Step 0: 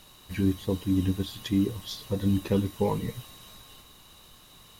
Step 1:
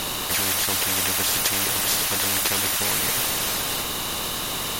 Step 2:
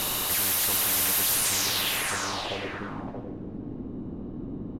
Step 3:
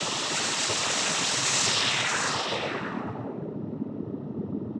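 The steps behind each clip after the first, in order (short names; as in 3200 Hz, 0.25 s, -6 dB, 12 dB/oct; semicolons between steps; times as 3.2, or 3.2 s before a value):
spectral compressor 10:1; gain +5.5 dB
hard clip -24.5 dBFS, distortion -8 dB; low-pass sweep 13000 Hz -> 270 Hz, 1.32–2.88; echo 0.627 s -6.5 dB; gain -1.5 dB
on a send at -7 dB: reverb RT60 0.95 s, pre-delay 60 ms; on the sum: noise vocoder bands 12; gain +3 dB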